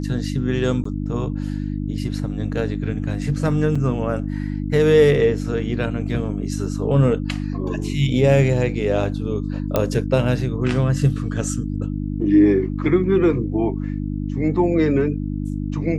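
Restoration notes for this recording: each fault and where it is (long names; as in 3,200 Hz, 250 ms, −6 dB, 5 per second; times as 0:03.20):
mains hum 50 Hz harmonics 6 −25 dBFS
0:00.84–0:00.85: drop-out 14 ms
0:03.75: drop-out 5 ms
0:09.76: click −5 dBFS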